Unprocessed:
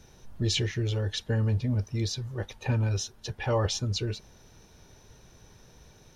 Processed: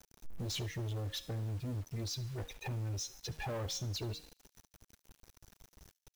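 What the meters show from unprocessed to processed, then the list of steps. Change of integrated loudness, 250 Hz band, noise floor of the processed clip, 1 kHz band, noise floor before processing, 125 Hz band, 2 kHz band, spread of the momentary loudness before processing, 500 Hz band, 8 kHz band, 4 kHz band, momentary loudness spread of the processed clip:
−10.0 dB, −11.5 dB, −85 dBFS, −9.5 dB, −56 dBFS, −10.5 dB, −10.0 dB, 8 LU, −12.0 dB, −6.5 dB, −8.5 dB, 5 LU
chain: spectral dynamics exaggerated over time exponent 1.5
tuned comb filter 270 Hz, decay 0.54 s, harmonics all, mix 40%
dynamic equaliser 1,800 Hz, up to −7 dB, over −56 dBFS, Q 1.2
in parallel at −2 dB: brickwall limiter −30.5 dBFS, peak gain reduction 9.5 dB
on the sum: downward compressor 8 to 1, threshold −32 dBFS, peak gain reduction 8 dB
hum removal 156.3 Hz, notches 21
soft clipping −39 dBFS, distortion −9 dB
bit reduction 10 bits
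on a send: delay with a high-pass on its return 72 ms, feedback 44%, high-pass 2,900 Hz, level −19 dB
on the sum: level +3.5 dB

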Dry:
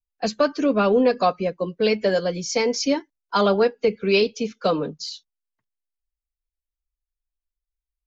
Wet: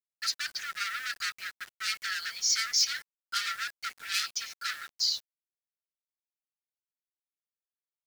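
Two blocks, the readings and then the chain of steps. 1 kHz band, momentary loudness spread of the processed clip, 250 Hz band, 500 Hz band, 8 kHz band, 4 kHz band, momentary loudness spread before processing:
−14.0 dB, 10 LU, below −40 dB, below −40 dB, can't be measured, +0.5 dB, 8 LU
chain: hard clipping −25.5 dBFS, distortion −5 dB
Chebyshev high-pass with heavy ripple 1,300 Hz, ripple 6 dB
bit reduction 9 bits
level +6 dB

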